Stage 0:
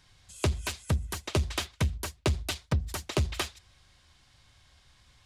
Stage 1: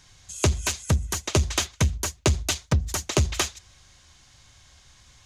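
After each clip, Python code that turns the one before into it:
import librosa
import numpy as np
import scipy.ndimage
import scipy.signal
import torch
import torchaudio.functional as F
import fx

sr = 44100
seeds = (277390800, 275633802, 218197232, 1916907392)

y = fx.peak_eq(x, sr, hz=6500.0, db=10.5, octaves=0.37)
y = F.gain(torch.from_numpy(y), 5.5).numpy()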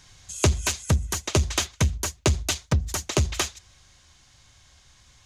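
y = fx.rider(x, sr, range_db=3, speed_s=2.0)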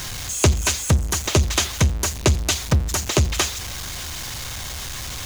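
y = x + 0.5 * 10.0 ** (-28.5 / 20.0) * np.sign(x)
y = F.gain(torch.from_numpy(y), 3.0).numpy()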